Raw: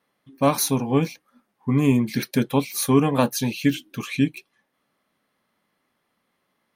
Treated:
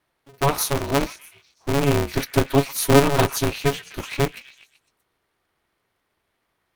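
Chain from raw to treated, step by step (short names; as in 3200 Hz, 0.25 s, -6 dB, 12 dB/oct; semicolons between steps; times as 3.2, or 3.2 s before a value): 2.15–3.6 comb 7.3 ms, depth 72%; on a send: delay with a stepping band-pass 0.126 s, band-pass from 1500 Hz, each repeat 0.7 oct, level -9 dB; on the sum: polarity switched at an audio rate 140 Hz; gain -1 dB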